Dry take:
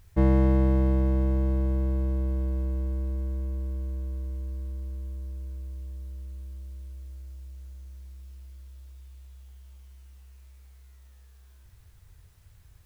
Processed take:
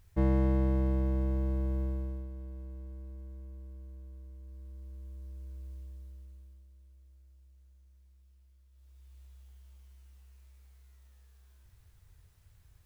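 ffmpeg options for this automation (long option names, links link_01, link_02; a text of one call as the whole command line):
ffmpeg -i in.wav -af "volume=13.5dB,afade=type=out:start_time=1.82:duration=0.47:silence=0.354813,afade=type=in:start_time=4.39:duration=1.32:silence=0.375837,afade=type=out:start_time=5.71:duration=0.96:silence=0.298538,afade=type=in:start_time=8.7:duration=0.51:silence=0.281838" out.wav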